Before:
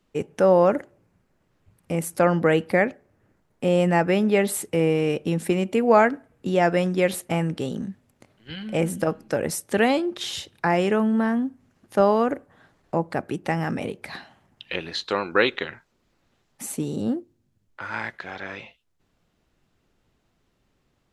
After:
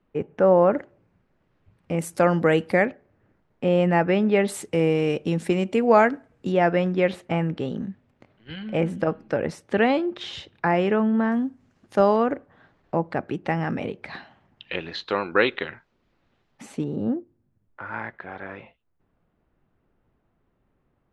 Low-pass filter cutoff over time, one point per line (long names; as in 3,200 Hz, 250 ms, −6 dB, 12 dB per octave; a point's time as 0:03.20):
2,000 Hz
from 0:00.73 3,600 Hz
from 0:01.99 8,800 Hz
from 0:02.85 3,400 Hz
from 0:04.48 6,900 Hz
from 0:06.52 3,100 Hz
from 0:11.32 7,100 Hz
from 0:12.16 3,600 Hz
from 0:16.84 1,600 Hz